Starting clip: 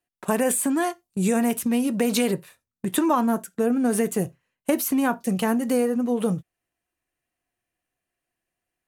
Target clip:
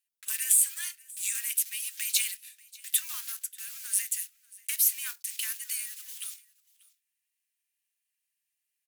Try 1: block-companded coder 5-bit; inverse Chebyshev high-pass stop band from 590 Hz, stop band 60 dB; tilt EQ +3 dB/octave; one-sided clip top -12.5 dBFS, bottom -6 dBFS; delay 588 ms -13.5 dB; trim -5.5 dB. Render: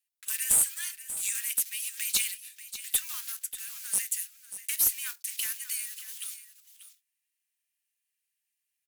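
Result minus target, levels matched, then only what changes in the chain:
echo-to-direct +10 dB; one-sided clip: distortion +9 dB
change: one-sided clip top -5 dBFS, bottom -6 dBFS; change: delay 588 ms -23.5 dB

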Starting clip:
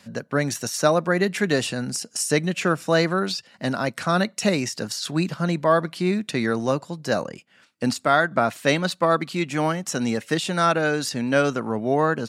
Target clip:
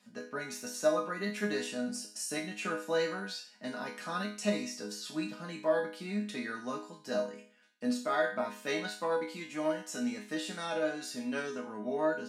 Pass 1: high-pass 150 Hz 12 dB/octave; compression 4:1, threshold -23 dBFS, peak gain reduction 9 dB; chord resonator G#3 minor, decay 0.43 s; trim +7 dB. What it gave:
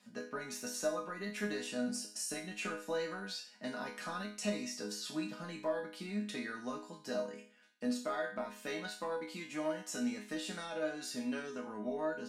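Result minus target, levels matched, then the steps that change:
compression: peak gain reduction +9 dB
remove: compression 4:1, threshold -23 dBFS, peak gain reduction 9 dB

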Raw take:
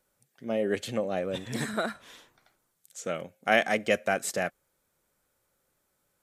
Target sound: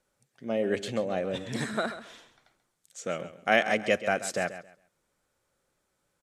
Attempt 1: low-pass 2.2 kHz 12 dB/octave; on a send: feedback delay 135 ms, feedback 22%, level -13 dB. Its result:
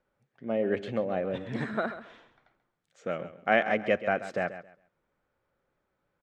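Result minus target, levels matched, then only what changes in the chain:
8 kHz band -19.5 dB
change: low-pass 8.7 kHz 12 dB/octave

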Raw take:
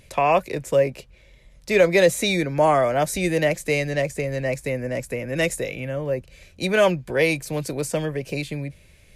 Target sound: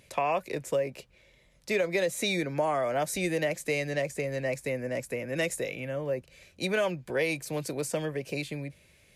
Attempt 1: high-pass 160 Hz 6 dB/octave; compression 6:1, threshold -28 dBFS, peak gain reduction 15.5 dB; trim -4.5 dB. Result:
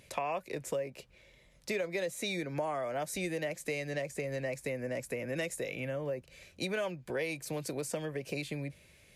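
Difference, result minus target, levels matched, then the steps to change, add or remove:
compression: peak gain reduction +7 dB
change: compression 6:1, threshold -19.5 dBFS, peak gain reduction 8.5 dB

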